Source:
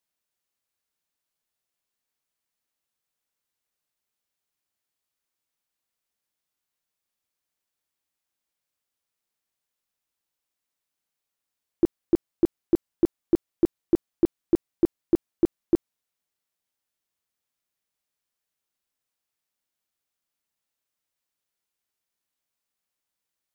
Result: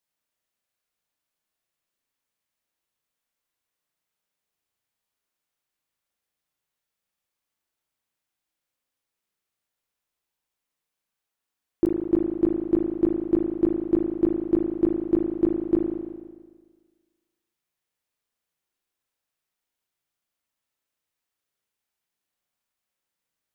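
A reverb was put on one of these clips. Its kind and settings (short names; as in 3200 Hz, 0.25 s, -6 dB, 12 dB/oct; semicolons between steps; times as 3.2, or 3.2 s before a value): spring tank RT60 1.5 s, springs 37 ms, chirp 50 ms, DRR 0 dB; gain -1 dB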